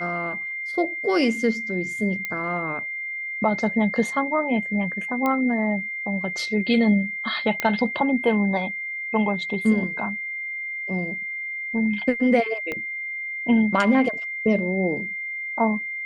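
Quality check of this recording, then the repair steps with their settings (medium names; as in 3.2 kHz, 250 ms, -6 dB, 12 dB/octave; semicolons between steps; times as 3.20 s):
whine 2.1 kHz -28 dBFS
2.25 s: pop -14 dBFS
5.26 s: pop -12 dBFS
7.60 s: pop -9 dBFS
12.72 s: pop -16 dBFS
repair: de-click; band-stop 2.1 kHz, Q 30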